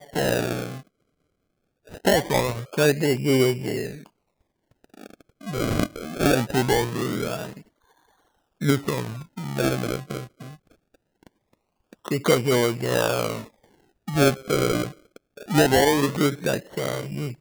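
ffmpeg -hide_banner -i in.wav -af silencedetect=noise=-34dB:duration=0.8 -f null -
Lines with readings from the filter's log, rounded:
silence_start: 0.80
silence_end: 1.94 | silence_duration: 1.14
silence_start: 3.98
silence_end: 5.01 | silence_duration: 1.03
silence_start: 7.58
silence_end: 8.61 | silence_duration: 1.03
silence_start: 10.48
silence_end: 11.93 | silence_duration: 1.45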